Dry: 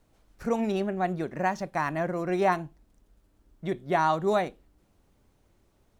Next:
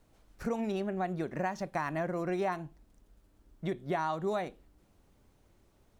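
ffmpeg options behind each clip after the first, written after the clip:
-af "acompressor=threshold=-30dB:ratio=4"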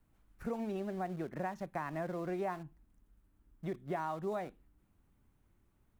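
-filter_complex "[0:a]equalizer=f=5k:w=0.76:g=-10.5,acrossover=split=380|780[a][b][c];[b]aeval=exprs='val(0)*gte(abs(val(0)),0.00335)':c=same[d];[a][d][c]amix=inputs=3:normalize=0,volume=-4.5dB"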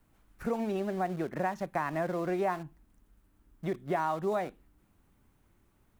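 -af "lowshelf=f=210:g=-5,volume=7.5dB"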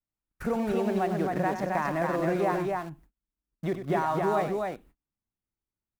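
-filter_complex "[0:a]agate=range=-34dB:threshold=-55dB:ratio=16:detection=peak,asplit=2[a][b];[b]alimiter=level_in=5.5dB:limit=-24dB:level=0:latency=1,volume=-5.5dB,volume=-2dB[c];[a][c]amix=inputs=2:normalize=0,aecho=1:1:96.21|265.3:0.316|0.708"

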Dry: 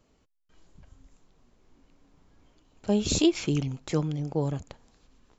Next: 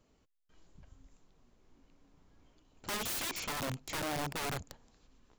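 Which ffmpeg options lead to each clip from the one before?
-af "aeval=exprs='(mod(23.7*val(0)+1,2)-1)/23.7':c=same,volume=-4dB"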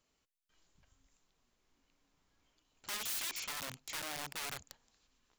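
-af "tiltshelf=f=940:g=-7,volume=-7.5dB"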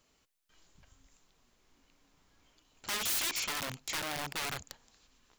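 -af "asoftclip=type=hard:threshold=-36.5dB,volume=8dB"

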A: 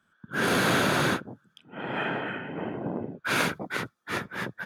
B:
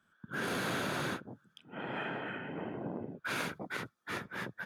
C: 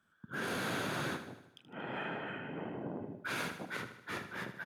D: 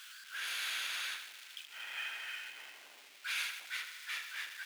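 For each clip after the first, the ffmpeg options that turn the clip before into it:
-af "acompressor=threshold=-36dB:ratio=2,volume=-3dB"
-af "aecho=1:1:77|154|231|308|385|462:0.299|0.161|0.0871|0.047|0.0254|0.0137,volume=-2dB"
-af "aeval=exprs='val(0)+0.5*0.00562*sgn(val(0))':c=same,highpass=f=2.5k:t=q:w=1.5,volume=1.5dB"

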